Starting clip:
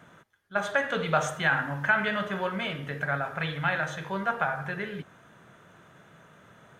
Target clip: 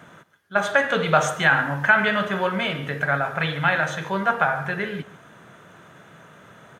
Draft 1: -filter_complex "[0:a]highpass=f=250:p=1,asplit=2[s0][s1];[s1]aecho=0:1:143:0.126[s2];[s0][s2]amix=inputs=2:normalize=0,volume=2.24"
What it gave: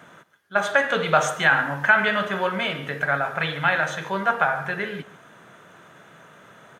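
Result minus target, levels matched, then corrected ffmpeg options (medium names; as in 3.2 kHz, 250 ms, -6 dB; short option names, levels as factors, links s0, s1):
125 Hz band -4.0 dB
-filter_complex "[0:a]highpass=f=86:p=1,asplit=2[s0][s1];[s1]aecho=0:1:143:0.126[s2];[s0][s2]amix=inputs=2:normalize=0,volume=2.24"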